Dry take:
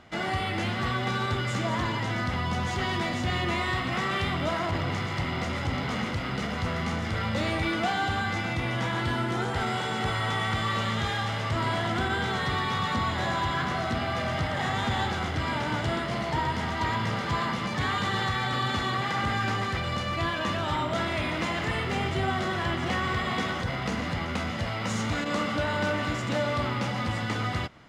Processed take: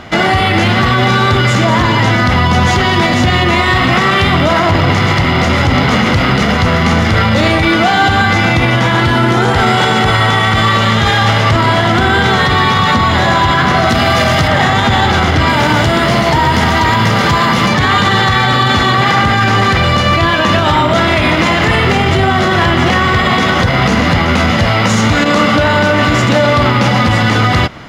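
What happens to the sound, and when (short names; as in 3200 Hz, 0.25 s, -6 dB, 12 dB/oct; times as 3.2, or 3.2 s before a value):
13.89–14.48 high shelf 5100 Hz +10.5 dB
15.49–17.69 high shelf 7900 Hz +8.5 dB
whole clip: bell 8300 Hz -6.5 dB 0.26 oct; maximiser +22.5 dB; gain -1 dB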